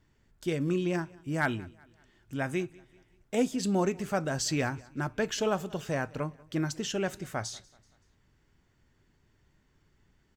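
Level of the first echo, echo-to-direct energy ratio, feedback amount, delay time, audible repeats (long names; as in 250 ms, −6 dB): −24.0 dB, −23.0 dB, 45%, 190 ms, 2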